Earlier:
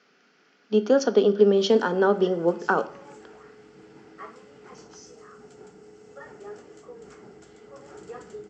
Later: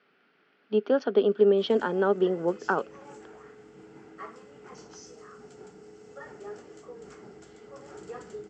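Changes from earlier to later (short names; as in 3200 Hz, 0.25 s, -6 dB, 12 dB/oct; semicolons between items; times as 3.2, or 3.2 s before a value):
speech: add LPF 3700 Hz 24 dB/oct; reverb: off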